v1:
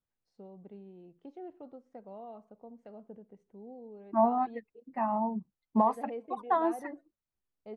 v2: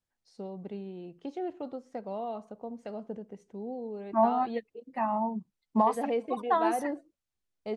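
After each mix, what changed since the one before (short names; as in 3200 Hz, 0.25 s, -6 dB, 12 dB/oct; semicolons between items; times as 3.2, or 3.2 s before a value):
first voice +9.5 dB; master: add bell 7200 Hz +12 dB 2.6 oct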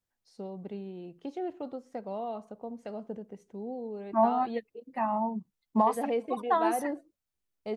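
master: remove LPF 9600 Hz 12 dB/oct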